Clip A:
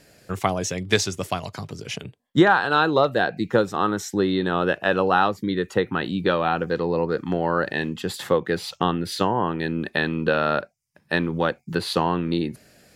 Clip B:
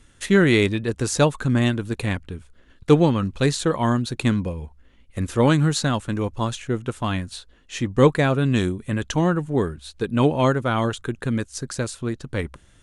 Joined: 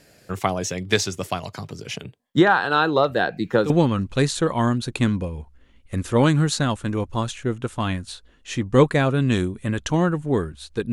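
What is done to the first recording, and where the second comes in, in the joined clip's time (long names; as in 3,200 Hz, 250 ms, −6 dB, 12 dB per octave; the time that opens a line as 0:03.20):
clip A
0:03.09: mix in clip B from 0:02.33 0.61 s −14 dB
0:03.70: continue with clip B from 0:02.94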